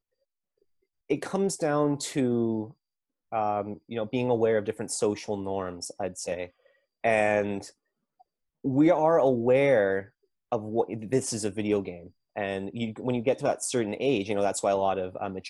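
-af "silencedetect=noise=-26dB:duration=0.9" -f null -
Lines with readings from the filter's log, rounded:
silence_start: 0.00
silence_end: 1.11 | silence_duration: 1.11
silence_start: 7.58
silence_end: 8.65 | silence_duration: 1.07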